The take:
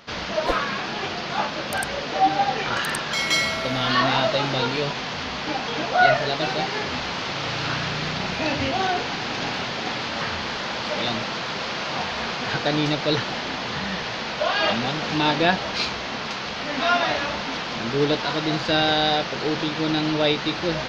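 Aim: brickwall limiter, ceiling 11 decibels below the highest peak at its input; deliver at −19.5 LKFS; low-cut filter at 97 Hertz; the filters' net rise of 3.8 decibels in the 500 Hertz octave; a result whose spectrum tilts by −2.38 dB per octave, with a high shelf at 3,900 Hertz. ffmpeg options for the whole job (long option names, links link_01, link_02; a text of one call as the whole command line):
ffmpeg -i in.wav -af "highpass=97,equalizer=frequency=500:width_type=o:gain=5,highshelf=frequency=3900:gain=-3,volume=5dB,alimiter=limit=-8.5dB:level=0:latency=1" out.wav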